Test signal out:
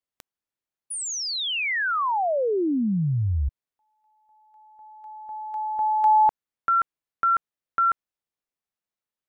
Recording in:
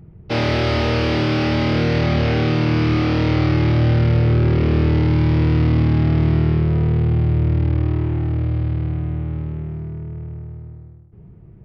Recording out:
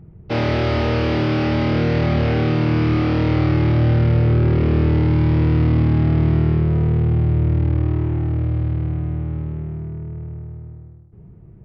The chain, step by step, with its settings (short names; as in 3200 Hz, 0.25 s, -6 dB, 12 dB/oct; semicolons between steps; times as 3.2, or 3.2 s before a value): high shelf 3200 Hz -8.5 dB